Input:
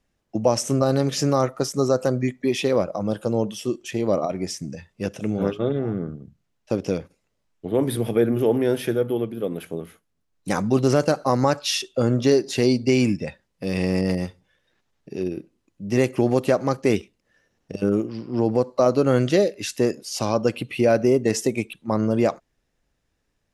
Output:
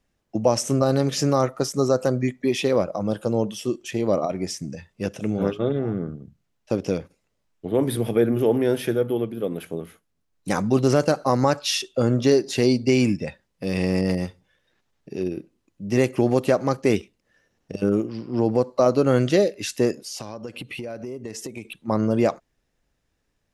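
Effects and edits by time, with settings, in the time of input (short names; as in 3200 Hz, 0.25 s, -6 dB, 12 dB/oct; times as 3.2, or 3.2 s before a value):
19.93–21.65 compressor 8:1, threshold -30 dBFS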